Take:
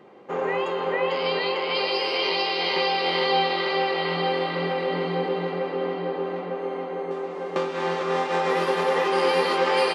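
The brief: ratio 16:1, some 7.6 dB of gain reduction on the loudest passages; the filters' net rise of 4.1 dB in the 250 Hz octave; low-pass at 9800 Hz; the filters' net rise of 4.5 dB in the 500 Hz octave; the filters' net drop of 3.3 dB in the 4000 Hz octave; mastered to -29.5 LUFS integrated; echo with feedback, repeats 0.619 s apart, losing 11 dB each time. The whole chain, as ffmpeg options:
-af "lowpass=9.8k,equalizer=f=250:t=o:g=4.5,equalizer=f=500:t=o:g=4,equalizer=f=4k:t=o:g=-4.5,acompressor=threshold=-21dB:ratio=16,aecho=1:1:619|1238|1857:0.282|0.0789|0.0221,volume=-4dB"

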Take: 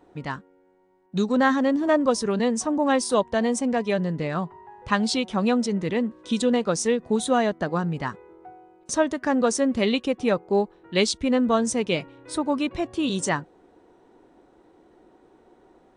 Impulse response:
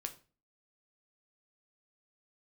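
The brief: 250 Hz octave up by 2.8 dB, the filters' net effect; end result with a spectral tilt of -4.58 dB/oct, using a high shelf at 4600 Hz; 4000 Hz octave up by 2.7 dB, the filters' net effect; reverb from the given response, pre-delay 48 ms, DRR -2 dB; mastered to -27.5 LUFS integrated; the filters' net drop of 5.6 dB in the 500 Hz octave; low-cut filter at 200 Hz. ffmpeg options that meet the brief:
-filter_complex "[0:a]highpass=200,equalizer=f=250:t=o:g=7,equalizer=f=500:t=o:g=-8.5,equalizer=f=4k:t=o:g=8,highshelf=f=4.6k:g=-8.5,asplit=2[a][b];[1:a]atrim=start_sample=2205,adelay=48[c];[b][c]afir=irnorm=-1:irlink=0,volume=4dB[d];[a][d]amix=inputs=2:normalize=0,volume=-8dB"

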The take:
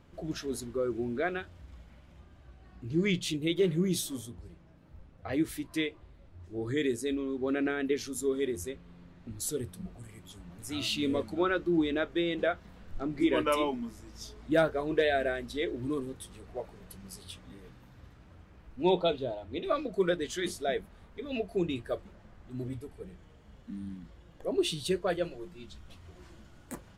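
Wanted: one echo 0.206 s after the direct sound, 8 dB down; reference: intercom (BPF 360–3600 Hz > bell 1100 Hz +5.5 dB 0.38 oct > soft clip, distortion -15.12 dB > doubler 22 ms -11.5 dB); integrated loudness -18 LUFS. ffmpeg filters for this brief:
-filter_complex "[0:a]highpass=360,lowpass=3.6k,equalizer=f=1.1k:t=o:w=0.38:g=5.5,aecho=1:1:206:0.398,asoftclip=threshold=-23dB,asplit=2[a][b];[b]adelay=22,volume=-11.5dB[c];[a][c]amix=inputs=2:normalize=0,volume=17dB"

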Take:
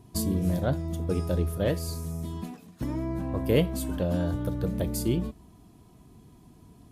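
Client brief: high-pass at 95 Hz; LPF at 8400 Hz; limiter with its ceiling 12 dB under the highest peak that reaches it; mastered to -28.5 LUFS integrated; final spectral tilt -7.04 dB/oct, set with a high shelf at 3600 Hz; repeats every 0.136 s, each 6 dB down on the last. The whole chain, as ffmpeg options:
-af "highpass=95,lowpass=8.4k,highshelf=f=3.6k:g=3.5,alimiter=limit=-21dB:level=0:latency=1,aecho=1:1:136|272|408|544|680|816:0.501|0.251|0.125|0.0626|0.0313|0.0157,volume=2.5dB"

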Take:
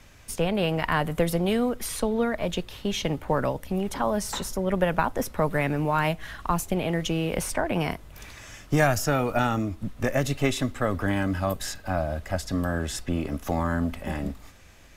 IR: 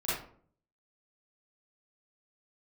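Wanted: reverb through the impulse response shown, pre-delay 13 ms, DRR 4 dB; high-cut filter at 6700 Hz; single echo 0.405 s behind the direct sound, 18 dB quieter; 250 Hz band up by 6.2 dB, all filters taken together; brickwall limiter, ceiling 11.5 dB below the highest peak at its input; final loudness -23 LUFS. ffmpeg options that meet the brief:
-filter_complex "[0:a]lowpass=6.7k,equalizer=f=250:t=o:g=8,alimiter=limit=-18dB:level=0:latency=1,aecho=1:1:405:0.126,asplit=2[a][b];[1:a]atrim=start_sample=2205,adelay=13[c];[b][c]afir=irnorm=-1:irlink=0,volume=-11dB[d];[a][d]amix=inputs=2:normalize=0,volume=3.5dB"

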